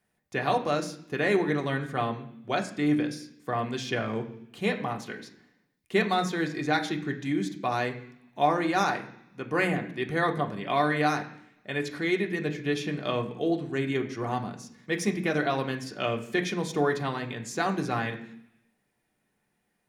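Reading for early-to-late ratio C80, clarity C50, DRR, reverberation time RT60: 14.0 dB, 11.5 dB, 1.5 dB, 0.70 s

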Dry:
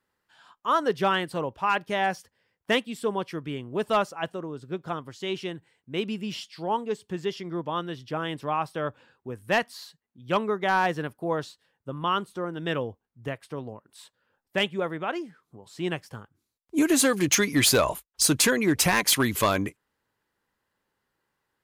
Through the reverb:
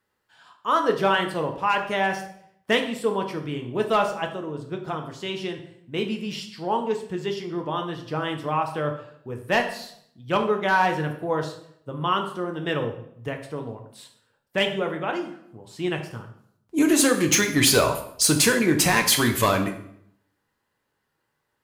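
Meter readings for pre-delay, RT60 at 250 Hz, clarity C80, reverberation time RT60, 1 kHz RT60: 3 ms, 0.80 s, 12.0 dB, 0.70 s, 0.65 s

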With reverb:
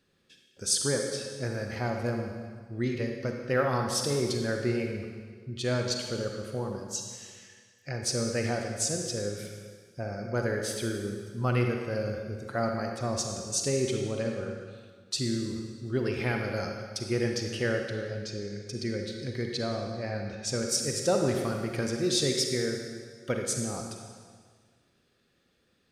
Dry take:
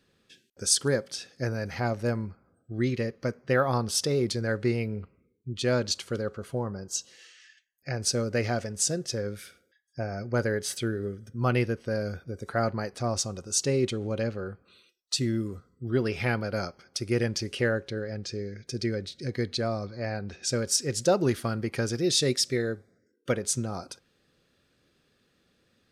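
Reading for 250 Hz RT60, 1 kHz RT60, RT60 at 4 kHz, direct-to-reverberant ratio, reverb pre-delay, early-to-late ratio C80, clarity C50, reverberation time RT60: 1.8 s, 1.7 s, 1.6 s, 2.5 dB, 33 ms, 4.5 dB, 3.0 dB, 1.7 s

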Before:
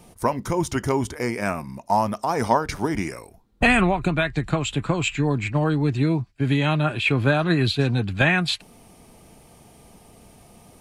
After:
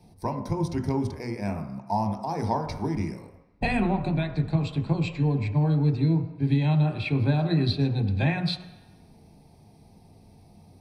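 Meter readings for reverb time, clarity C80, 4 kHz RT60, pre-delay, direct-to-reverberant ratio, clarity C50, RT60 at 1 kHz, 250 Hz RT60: 1.0 s, 11.0 dB, 1.1 s, 17 ms, 6.0 dB, 9.0 dB, 1.1 s, 0.80 s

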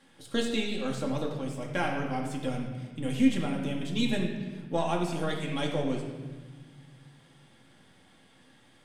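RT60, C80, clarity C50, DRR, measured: 1.4 s, 6.0 dB, 4.0 dB, -1.0 dB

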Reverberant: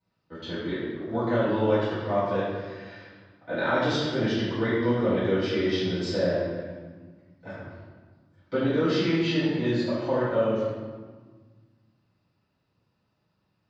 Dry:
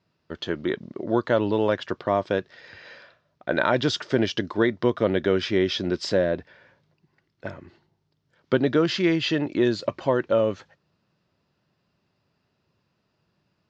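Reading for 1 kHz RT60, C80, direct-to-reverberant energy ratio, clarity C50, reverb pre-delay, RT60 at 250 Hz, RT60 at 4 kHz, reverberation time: 1.5 s, 1.0 dB, -16.0 dB, -1.5 dB, 3 ms, 2.2 s, 1.0 s, 1.5 s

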